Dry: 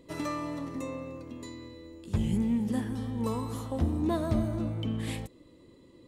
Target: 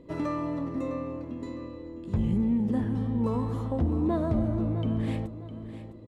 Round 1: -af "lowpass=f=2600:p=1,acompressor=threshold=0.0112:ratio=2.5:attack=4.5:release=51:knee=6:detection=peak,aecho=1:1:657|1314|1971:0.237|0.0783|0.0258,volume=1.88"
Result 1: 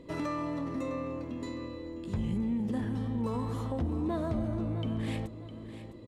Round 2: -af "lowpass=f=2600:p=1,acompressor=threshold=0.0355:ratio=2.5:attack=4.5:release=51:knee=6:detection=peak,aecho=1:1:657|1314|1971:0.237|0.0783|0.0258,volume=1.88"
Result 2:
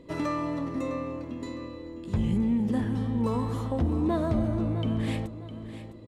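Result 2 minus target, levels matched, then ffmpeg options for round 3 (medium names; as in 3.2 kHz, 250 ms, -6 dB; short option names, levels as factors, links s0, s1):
2 kHz band +4.5 dB
-af "lowpass=f=960:p=1,acompressor=threshold=0.0355:ratio=2.5:attack=4.5:release=51:knee=6:detection=peak,aecho=1:1:657|1314|1971:0.237|0.0783|0.0258,volume=1.88"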